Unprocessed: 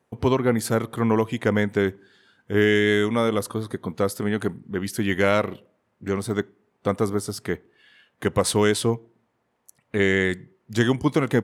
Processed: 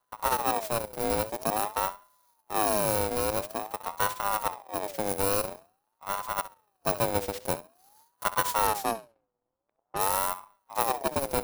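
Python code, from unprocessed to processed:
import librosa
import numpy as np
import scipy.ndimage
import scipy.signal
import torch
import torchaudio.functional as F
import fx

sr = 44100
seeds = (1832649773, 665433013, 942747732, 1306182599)

p1 = fx.bit_reversed(x, sr, seeds[0], block=32)
p2 = fx.env_lowpass(p1, sr, base_hz=460.0, full_db=-22.0, at=(8.67, 10.01))
p3 = np.maximum(p2, 0.0)
p4 = p3 + fx.room_flutter(p3, sr, wall_m=11.2, rt60_s=0.26, dry=0)
p5 = fx.rider(p4, sr, range_db=4, speed_s=2.0)
p6 = fx.ring_lfo(p5, sr, carrier_hz=750.0, swing_pct=35, hz=0.48)
y = p6 * 10.0 ** (-1.5 / 20.0)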